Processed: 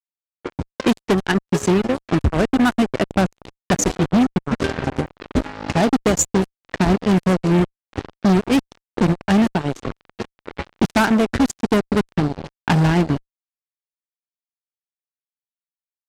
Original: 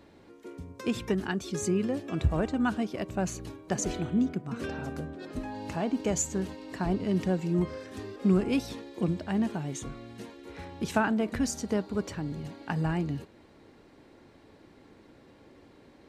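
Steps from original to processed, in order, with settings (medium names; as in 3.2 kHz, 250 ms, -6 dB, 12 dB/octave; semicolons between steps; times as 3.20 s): whistle 500 Hz -57 dBFS; transient shaper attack +9 dB, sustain -10 dB; gain riding within 3 dB 2 s; fuzz box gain 27 dB, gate -35 dBFS; level-controlled noise filter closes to 2.9 kHz, open at -14 dBFS; trim +1.5 dB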